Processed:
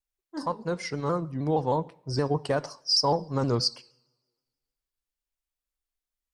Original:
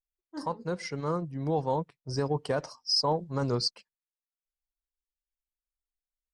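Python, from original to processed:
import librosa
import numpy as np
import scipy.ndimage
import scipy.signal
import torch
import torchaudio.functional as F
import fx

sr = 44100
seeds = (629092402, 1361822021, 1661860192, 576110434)

y = fx.rev_double_slope(x, sr, seeds[0], early_s=0.59, late_s=1.7, knee_db=-23, drr_db=17.0)
y = fx.vibrato_shape(y, sr, shape='saw_down', rate_hz=6.4, depth_cents=100.0)
y = y * 10.0 ** (3.0 / 20.0)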